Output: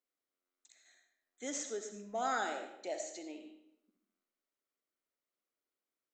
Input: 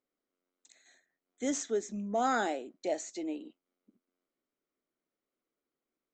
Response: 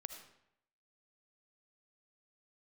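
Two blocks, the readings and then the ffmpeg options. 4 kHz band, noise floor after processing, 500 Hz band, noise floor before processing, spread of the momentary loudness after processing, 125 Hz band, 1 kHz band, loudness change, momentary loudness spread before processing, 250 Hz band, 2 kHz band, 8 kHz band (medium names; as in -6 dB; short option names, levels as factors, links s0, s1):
-2.5 dB, under -85 dBFS, -7.0 dB, under -85 dBFS, 14 LU, no reading, -4.5 dB, -5.5 dB, 10 LU, -11.0 dB, -3.0 dB, -2.5 dB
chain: -filter_complex "[0:a]lowshelf=f=440:g=-12[s0];[1:a]atrim=start_sample=2205[s1];[s0][s1]afir=irnorm=-1:irlink=0,volume=1.19"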